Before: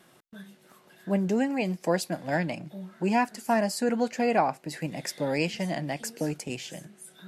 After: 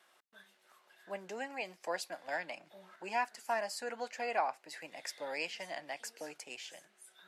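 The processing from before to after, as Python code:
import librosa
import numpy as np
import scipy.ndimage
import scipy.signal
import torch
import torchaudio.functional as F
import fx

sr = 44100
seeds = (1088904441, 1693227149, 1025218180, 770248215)

y = scipy.signal.sosfilt(scipy.signal.butter(2, 740.0, 'highpass', fs=sr, output='sos'), x)
y = fx.high_shelf(y, sr, hz=8400.0, db=-8.5)
y = fx.band_squash(y, sr, depth_pct=40, at=(2.28, 2.96))
y = y * librosa.db_to_amplitude(-5.5)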